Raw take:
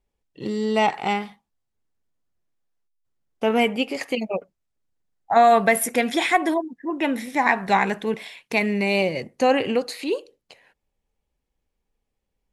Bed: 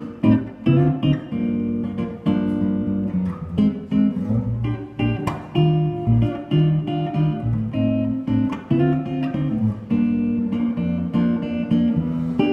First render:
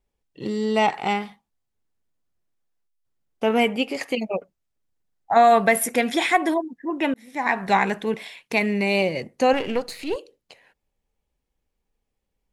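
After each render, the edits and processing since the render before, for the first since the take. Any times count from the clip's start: 7.14–7.64 s: fade in; 9.53–10.16 s: partial rectifier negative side -7 dB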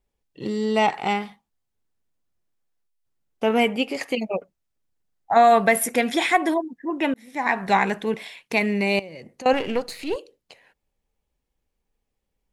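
8.99–9.46 s: compression 4:1, threshold -38 dBFS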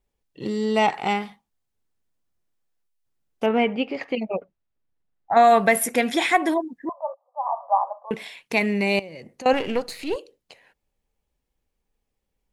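3.46–5.37 s: distance through air 250 m; 6.89–8.11 s: Chebyshev band-pass 550–1200 Hz, order 5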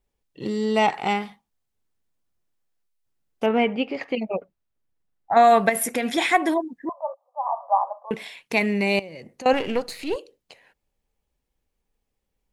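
5.69–6.18 s: compression, threshold -19 dBFS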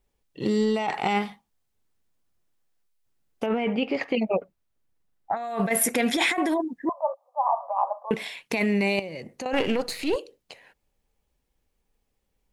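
compressor with a negative ratio -24 dBFS, ratio -1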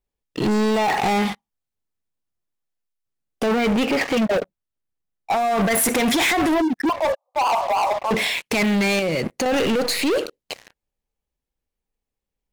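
waveshaping leveller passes 5; peak limiter -16.5 dBFS, peak gain reduction 6 dB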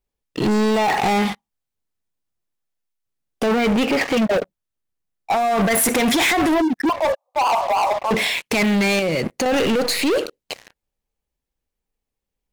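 trim +1.5 dB

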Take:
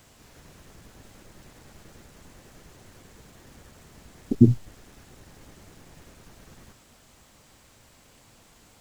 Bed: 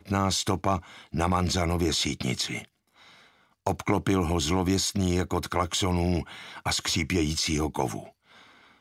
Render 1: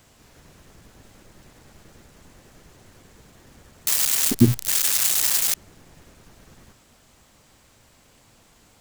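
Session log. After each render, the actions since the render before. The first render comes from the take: 3.87–5.54 s: zero-crossing glitches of -10 dBFS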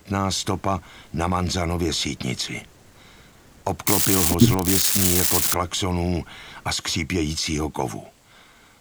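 add bed +2 dB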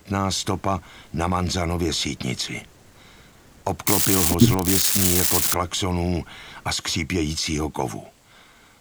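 no audible change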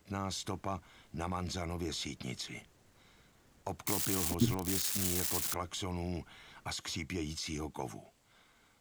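trim -14.5 dB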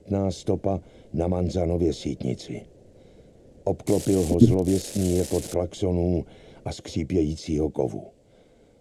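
low-pass 11 kHz 24 dB/octave; resonant low shelf 770 Hz +13 dB, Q 3

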